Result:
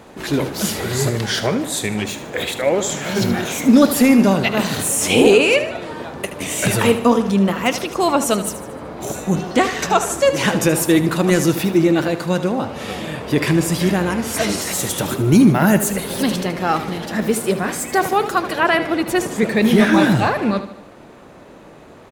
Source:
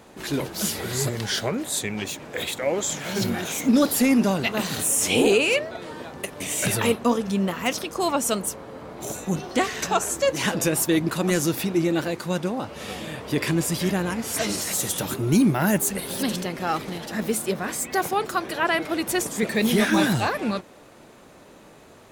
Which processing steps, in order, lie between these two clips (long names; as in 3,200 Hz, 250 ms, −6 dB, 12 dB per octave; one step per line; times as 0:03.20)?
high-shelf EQ 3,700 Hz −5.5 dB, from 0:18.77 −11 dB
repeating echo 76 ms, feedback 48%, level −12 dB
level +7 dB